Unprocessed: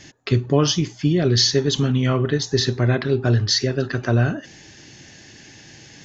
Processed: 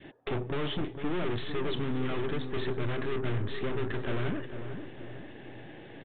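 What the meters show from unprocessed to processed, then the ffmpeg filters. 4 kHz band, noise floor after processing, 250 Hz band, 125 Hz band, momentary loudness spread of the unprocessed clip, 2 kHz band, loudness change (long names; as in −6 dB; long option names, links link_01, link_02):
−19.0 dB, −48 dBFS, −12.5 dB, −16.0 dB, 6 LU, −9.5 dB, −14.5 dB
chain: -filter_complex "[0:a]equalizer=frequency=530:width_type=o:width=2.6:gain=15,aeval=exprs='(tanh(14.1*val(0)+0.7)-tanh(0.7))/14.1':channel_layout=same,adynamicequalizer=threshold=0.00794:dfrequency=730:dqfactor=0.99:tfrequency=730:tqfactor=0.99:attack=5:release=100:ratio=0.375:range=4:mode=cutabove:tftype=bell,asplit=2[link_01][link_02];[link_02]adelay=452,lowpass=frequency=1300:poles=1,volume=-8dB,asplit=2[link_03][link_04];[link_04]adelay=452,lowpass=frequency=1300:poles=1,volume=0.5,asplit=2[link_05][link_06];[link_06]adelay=452,lowpass=frequency=1300:poles=1,volume=0.5,asplit=2[link_07][link_08];[link_08]adelay=452,lowpass=frequency=1300:poles=1,volume=0.5,asplit=2[link_09][link_10];[link_10]adelay=452,lowpass=frequency=1300:poles=1,volume=0.5,asplit=2[link_11][link_12];[link_12]adelay=452,lowpass=frequency=1300:poles=1,volume=0.5[link_13];[link_03][link_05][link_07][link_09][link_11][link_13]amix=inputs=6:normalize=0[link_14];[link_01][link_14]amix=inputs=2:normalize=0,aresample=8000,aresample=44100,volume=-6.5dB"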